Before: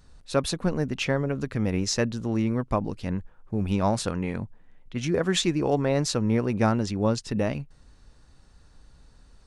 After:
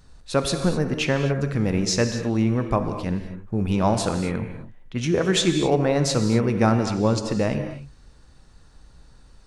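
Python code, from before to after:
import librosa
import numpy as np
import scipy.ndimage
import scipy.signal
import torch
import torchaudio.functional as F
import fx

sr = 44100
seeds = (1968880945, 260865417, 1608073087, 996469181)

y = fx.rev_gated(x, sr, seeds[0], gate_ms=280, shape='flat', drr_db=6.5)
y = F.gain(torch.from_numpy(y), 3.0).numpy()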